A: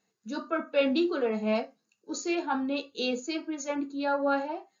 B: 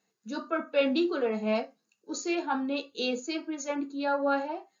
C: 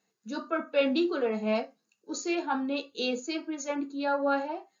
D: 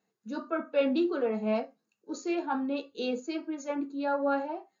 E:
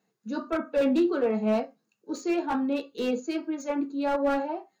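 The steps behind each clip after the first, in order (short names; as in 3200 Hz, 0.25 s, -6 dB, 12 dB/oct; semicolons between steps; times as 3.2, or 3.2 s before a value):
HPF 120 Hz 6 dB/oct
nothing audible
high shelf 2100 Hz -9.5 dB
resonant low shelf 100 Hz -6 dB, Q 3; slew limiter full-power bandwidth 39 Hz; gain +3.5 dB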